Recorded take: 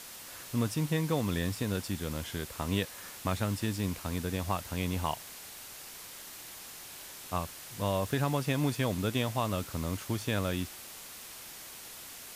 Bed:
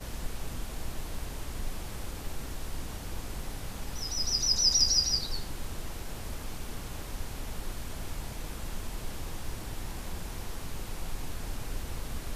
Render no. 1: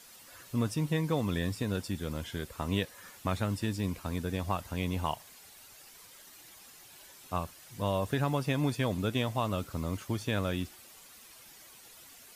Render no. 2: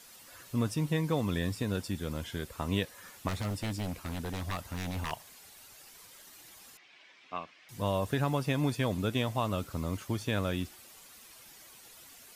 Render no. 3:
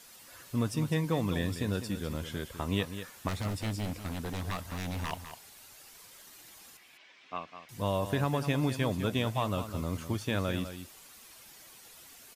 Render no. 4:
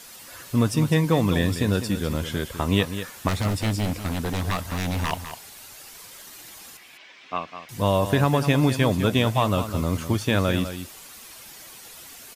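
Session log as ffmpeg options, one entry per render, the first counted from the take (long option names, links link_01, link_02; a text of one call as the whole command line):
ffmpeg -i in.wav -af "afftdn=noise_reduction=10:noise_floor=-47" out.wav
ffmpeg -i in.wav -filter_complex "[0:a]asettb=1/sr,asplit=3[link_01][link_02][link_03];[link_01]atrim=end=3.284[link_04];[link_02]atrim=start=3.28:end=5.12,asetpts=PTS-STARTPTS,afade=type=in:duration=0.004:curve=qsin,afade=type=out:start_time=1.836:duration=0.004:curve=qsin,aeval=exprs='0.0398*(abs(mod(val(0)/0.0398+3,4)-2)-1)':channel_layout=same[link_05];[link_03]atrim=start=5.116[link_06];[link_04][link_05]acrossfade=duration=0.004:curve1=hsin:curve2=qsin[link_07];[link_07][link_06]acrossfade=duration=0.004:curve1=qsin:curve2=hsin,asettb=1/sr,asplit=3[link_08][link_09][link_10];[link_08]atrim=end=6.774[link_11];[link_09]atrim=start=6.77:end=7.69,asetpts=PTS-STARTPTS,afade=type=in:duration=0.004:curve=qsin,afade=type=out:start_time=0.916:duration=0.004:curve=qsin,highpass=340,equalizer=frequency=390:width_type=q:width=4:gain=-6,equalizer=frequency=560:width_type=q:width=4:gain=-6,equalizer=frequency=870:width_type=q:width=4:gain=-7,equalizer=frequency=1400:width_type=q:width=4:gain=-4,equalizer=frequency=2200:width_type=q:width=4:gain=7,equalizer=frequency=4200:width_type=q:width=4:gain=-5,lowpass=frequency=4300:width=0.5412,lowpass=frequency=4300:width=1.3066[link_12];[link_10]atrim=start=7.686[link_13];[link_11][link_12]acrossfade=duration=0.004:curve1=hsin:curve2=qsin[link_14];[link_14][link_13]acrossfade=duration=0.004:curve1=qsin:curve2=hsin" out.wav
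ffmpeg -i in.wav -af "aecho=1:1:202:0.299" out.wav
ffmpeg -i in.wav -af "volume=9.5dB" out.wav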